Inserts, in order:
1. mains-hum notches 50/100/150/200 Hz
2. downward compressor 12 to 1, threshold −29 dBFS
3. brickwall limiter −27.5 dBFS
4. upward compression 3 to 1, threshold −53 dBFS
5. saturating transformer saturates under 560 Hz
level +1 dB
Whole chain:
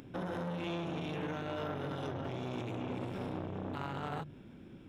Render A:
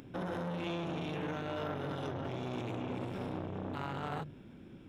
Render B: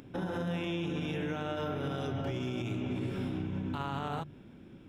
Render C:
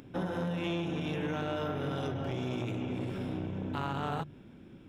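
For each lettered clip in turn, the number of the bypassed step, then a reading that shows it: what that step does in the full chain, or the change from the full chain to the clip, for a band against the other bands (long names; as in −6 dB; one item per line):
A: 2, average gain reduction 3.5 dB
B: 5, change in crest factor −4.0 dB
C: 3, average gain reduction 2.0 dB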